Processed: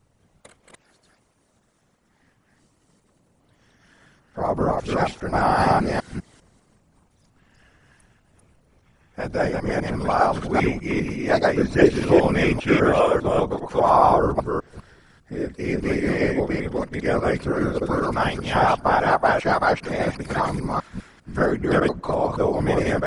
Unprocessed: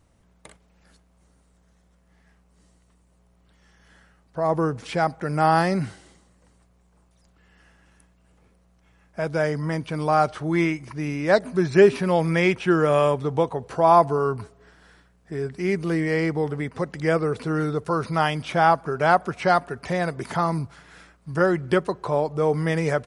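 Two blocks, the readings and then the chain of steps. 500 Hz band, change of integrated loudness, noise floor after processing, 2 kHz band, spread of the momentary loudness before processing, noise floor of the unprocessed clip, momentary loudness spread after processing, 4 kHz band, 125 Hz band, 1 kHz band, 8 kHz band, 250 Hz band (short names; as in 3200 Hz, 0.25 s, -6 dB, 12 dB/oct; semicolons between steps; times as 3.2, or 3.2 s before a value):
+1.0 dB, +1.0 dB, -64 dBFS, +2.0 dB, 11 LU, -61 dBFS, 11 LU, +1.5 dB, -0.5 dB, +1.5 dB, n/a, +2.0 dB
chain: reverse delay 0.2 s, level 0 dB; whisperiser; gain -1.5 dB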